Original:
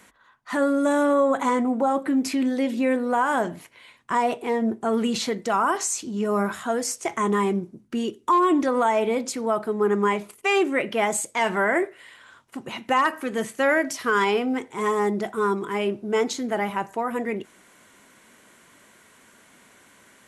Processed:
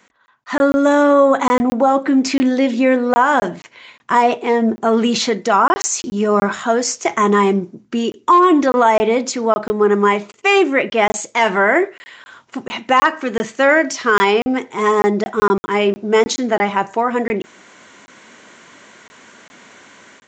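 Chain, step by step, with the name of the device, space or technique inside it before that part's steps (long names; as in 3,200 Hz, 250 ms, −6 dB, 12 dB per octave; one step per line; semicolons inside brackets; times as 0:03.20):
call with lost packets (high-pass filter 170 Hz 6 dB per octave; downsampling to 16,000 Hz; automatic gain control gain up to 11.5 dB; dropped packets of 20 ms random)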